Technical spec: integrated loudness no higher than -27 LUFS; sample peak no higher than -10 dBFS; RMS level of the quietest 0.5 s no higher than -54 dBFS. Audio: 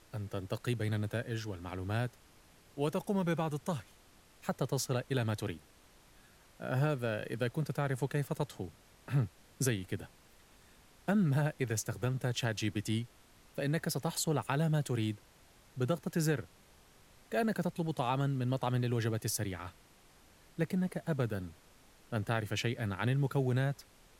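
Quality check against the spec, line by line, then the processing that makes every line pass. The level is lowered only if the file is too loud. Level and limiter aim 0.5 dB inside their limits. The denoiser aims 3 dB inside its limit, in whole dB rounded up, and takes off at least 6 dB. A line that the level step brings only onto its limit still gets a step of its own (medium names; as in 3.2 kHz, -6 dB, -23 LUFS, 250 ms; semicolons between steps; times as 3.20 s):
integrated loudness -35.0 LUFS: pass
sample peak -17.0 dBFS: pass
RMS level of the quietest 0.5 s -62 dBFS: pass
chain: none needed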